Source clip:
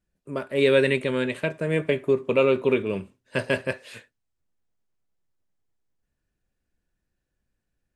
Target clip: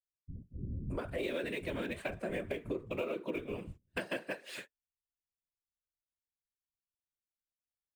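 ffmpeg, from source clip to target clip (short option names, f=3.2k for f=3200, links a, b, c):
-filter_complex "[0:a]acrossover=split=570|2700[a][b][c];[c]acrusher=bits=2:mode=log:mix=0:aa=0.000001[d];[a][b][d]amix=inputs=3:normalize=0,agate=range=-30dB:threshold=-45dB:ratio=16:detection=peak,afftfilt=real='hypot(re,im)*cos(2*PI*random(0))':imag='hypot(re,im)*sin(2*PI*random(1))':win_size=512:overlap=0.75,bandreject=f=450:w=13,acrossover=split=150[e][f];[f]adelay=620[g];[e][g]amix=inputs=2:normalize=0,acompressor=threshold=-40dB:ratio=6,volume=5dB"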